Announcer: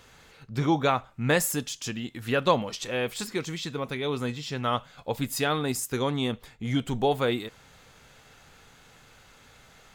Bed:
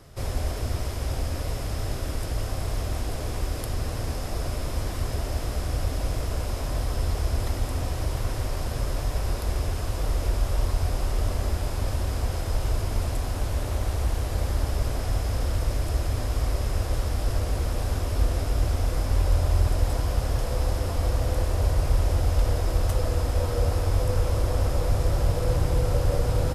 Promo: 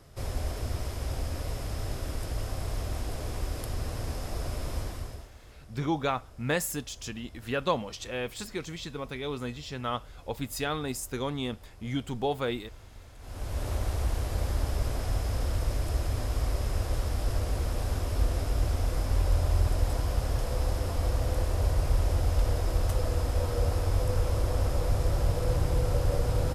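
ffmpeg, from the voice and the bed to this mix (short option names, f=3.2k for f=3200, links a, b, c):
-filter_complex "[0:a]adelay=5200,volume=-5dB[a];[1:a]volume=15.5dB,afade=t=out:st=4.76:d=0.54:silence=0.112202,afade=t=in:st=13.18:d=0.5:silence=0.1[b];[a][b]amix=inputs=2:normalize=0"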